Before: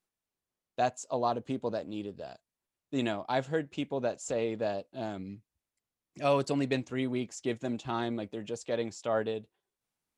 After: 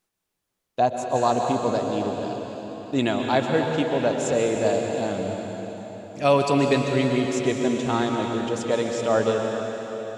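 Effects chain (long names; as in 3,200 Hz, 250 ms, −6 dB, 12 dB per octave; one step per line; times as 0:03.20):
dense smooth reverb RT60 4.1 s, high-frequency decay 0.95×, pre-delay 110 ms, DRR 1.5 dB
gain on a spectral selection 0:00.79–0:01.16, 1,100–9,100 Hz −7 dB
level +8 dB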